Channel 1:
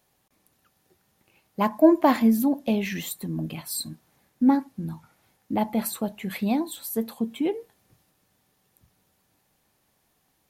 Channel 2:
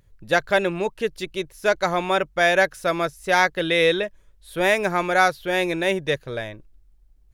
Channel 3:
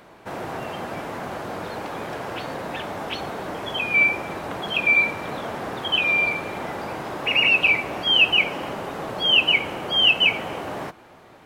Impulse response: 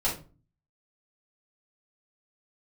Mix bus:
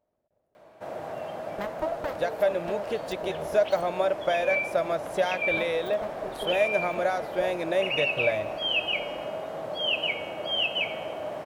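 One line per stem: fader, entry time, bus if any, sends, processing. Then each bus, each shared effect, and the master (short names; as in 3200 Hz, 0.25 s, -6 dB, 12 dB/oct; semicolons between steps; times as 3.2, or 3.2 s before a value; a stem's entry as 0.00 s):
-3.0 dB, 0.00 s, bus A, no send, Wiener smoothing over 41 samples; full-wave rectifier
-2.5 dB, 1.90 s, bus A, no send, dry
-1.0 dB, 0.55 s, no bus, no send, resonator 160 Hz, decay 1.5 s, mix 70%
bus A: 0.0 dB, compressor 6:1, threshold -30 dBFS, peak gain reduction 15.5 dB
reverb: off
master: HPF 41 Hz; bell 610 Hz +14 dB 0.47 oct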